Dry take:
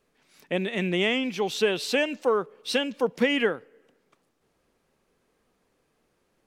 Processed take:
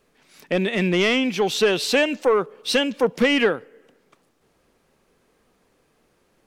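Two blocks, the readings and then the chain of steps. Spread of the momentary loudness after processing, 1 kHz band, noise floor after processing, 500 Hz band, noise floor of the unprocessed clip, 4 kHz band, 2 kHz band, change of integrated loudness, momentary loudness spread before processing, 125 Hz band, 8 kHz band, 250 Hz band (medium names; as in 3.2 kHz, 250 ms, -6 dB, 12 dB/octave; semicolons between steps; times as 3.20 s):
4 LU, +5.0 dB, -65 dBFS, +5.0 dB, -72 dBFS, +5.5 dB, +5.0 dB, +5.0 dB, 5 LU, +6.0 dB, +7.0 dB, +5.5 dB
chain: saturation -17 dBFS, distortion -16 dB; trim +7 dB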